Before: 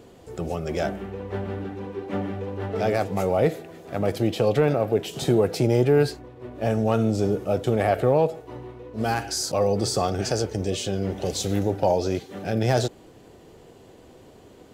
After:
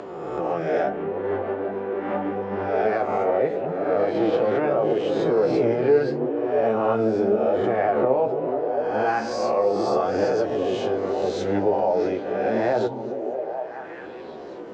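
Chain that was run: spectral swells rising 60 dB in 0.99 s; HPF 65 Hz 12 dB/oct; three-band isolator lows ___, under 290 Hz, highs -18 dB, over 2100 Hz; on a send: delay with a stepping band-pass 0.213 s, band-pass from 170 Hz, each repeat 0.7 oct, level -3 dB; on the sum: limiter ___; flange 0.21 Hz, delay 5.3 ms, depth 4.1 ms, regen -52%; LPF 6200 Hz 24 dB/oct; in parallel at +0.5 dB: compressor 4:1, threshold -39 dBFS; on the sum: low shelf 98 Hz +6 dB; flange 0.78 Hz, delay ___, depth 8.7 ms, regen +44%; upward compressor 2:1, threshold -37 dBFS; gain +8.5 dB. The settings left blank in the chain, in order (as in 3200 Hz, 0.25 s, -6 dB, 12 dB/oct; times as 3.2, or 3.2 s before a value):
-19 dB, -15.5 dBFS, 9.7 ms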